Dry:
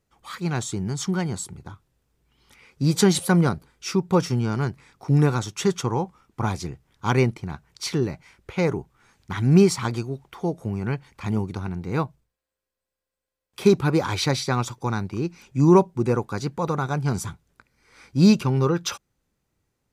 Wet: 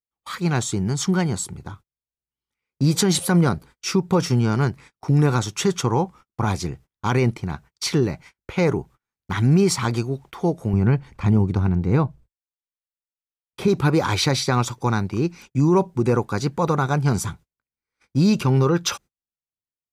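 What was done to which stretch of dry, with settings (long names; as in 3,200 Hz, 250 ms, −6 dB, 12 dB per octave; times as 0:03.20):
0:10.73–0:13.68: spectral tilt −2 dB per octave
whole clip: noise gate −46 dBFS, range −36 dB; brickwall limiter −14 dBFS; level +4.5 dB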